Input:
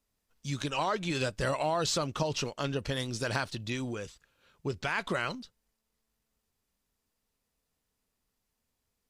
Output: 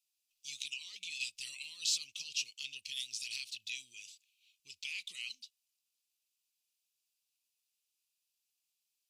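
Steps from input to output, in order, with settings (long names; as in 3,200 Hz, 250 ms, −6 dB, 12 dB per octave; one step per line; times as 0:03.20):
elliptic high-pass filter 2,500 Hz, stop band 40 dB
0:00.73–0:01.20: downward compressor, threshold −40 dBFS, peak gain reduction 7 dB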